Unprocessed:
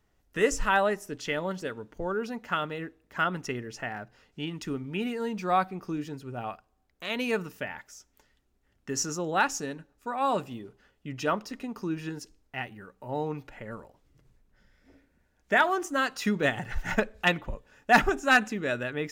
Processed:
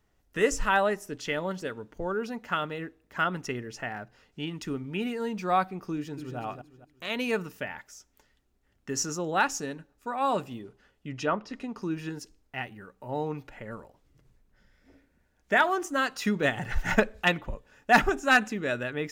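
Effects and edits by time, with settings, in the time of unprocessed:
5.94–6.38 echo throw 0.23 s, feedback 35%, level -7.5 dB
10.62–11.82 treble ducked by the level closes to 2400 Hz, closed at -25 dBFS
16.61–17.2 gain +3.5 dB

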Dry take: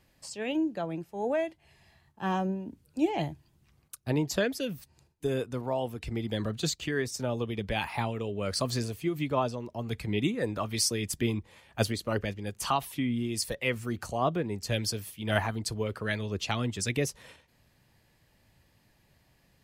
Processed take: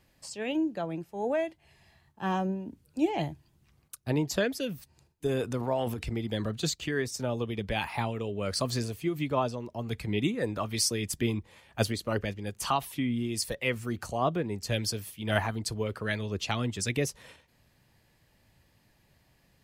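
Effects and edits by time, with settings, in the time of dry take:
5.26–6.14 transient shaper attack +4 dB, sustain +9 dB

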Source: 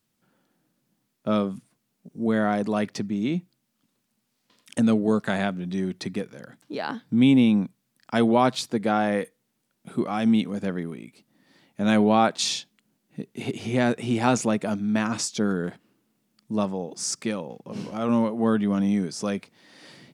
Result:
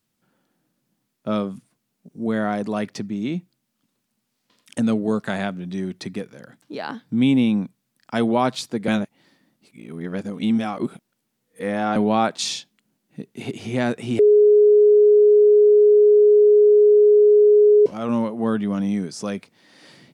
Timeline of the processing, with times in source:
8.88–11.96 reverse
14.19–17.86 bleep 418 Hz -9.5 dBFS

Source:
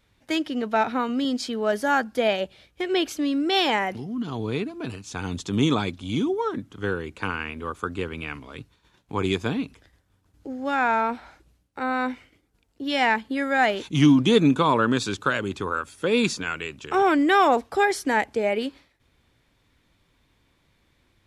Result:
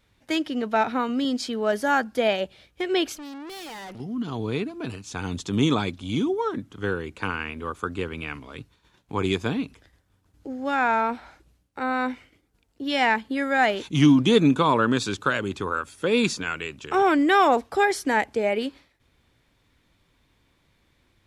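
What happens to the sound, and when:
3.15–4 tube stage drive 37 dB, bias 0.6

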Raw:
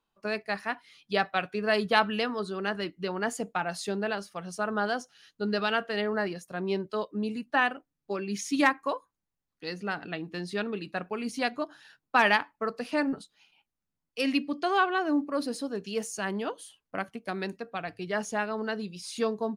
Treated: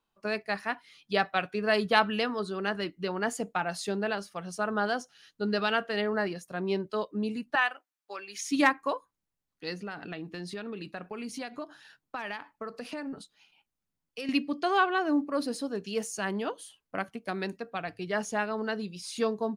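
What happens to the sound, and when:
7.55–8.48 HPF 830 Hz
9.74–14.29 compressor 5:1, threshold -34 dBFS

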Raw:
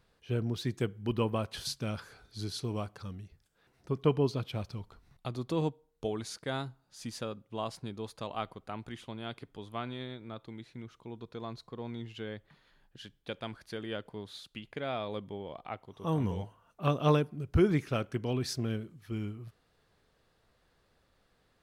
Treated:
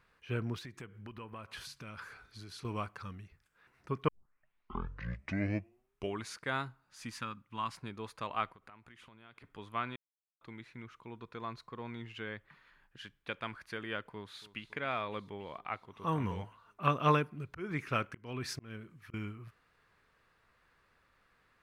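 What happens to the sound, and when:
0.58–2.65 compressor 5:1, threshold -41 dBFS
4.08 tape start 2.16 s
7.13–7.75 band shelf 510 Hz -11 dB 1.2 oct
8.46–9.44 compressor 16:1, threshold -51 dBFS
9.96–10.41 mute
14.11–14.61 echo throw 0.28 s, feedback 80%, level -17 dB
17.05–19.14 auto swell 0.354 s
whole clip: band shelf 1600 Hz +9.5 dB; gain -4 dB

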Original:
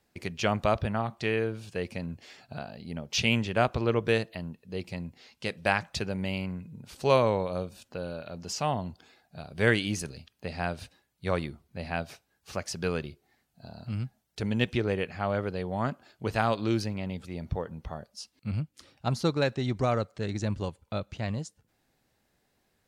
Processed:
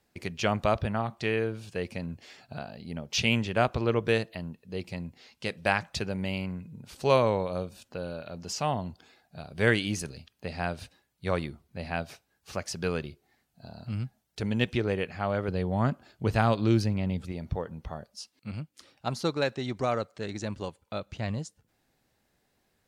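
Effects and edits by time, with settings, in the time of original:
15.48–17.32 low shelf 240 Hz +8 dB
18.2–21.06 low shelf 140 Hz -11.5 dB

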